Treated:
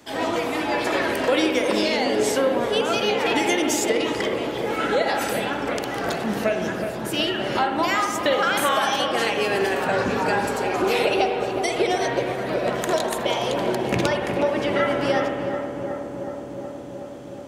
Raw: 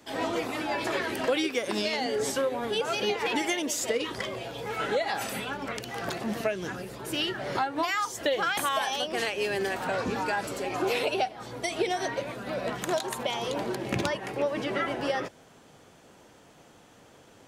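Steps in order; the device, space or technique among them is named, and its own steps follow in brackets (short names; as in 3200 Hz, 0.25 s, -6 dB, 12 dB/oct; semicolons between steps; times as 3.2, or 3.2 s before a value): dub delay into a spring reverb (darkening echo 0.37 s, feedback 82%, low-pass 1500 Hz, level -7 dB; spring tank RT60 1.3 s, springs 54 ms, chirp 60 ms, DRR 5 dB); gain +5 dB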